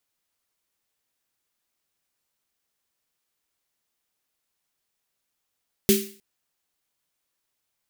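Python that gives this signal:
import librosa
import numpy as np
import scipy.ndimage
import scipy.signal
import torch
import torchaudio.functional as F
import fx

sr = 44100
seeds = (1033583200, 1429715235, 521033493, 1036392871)

y = fx.drum_snare(sr, seeds[0], length_s=0.31, hz=210.0, second_hz=390.0, noise_db=-4.5, noise_from_hz=2000.0, decay_s=0.38, noise_decay_s=0.44)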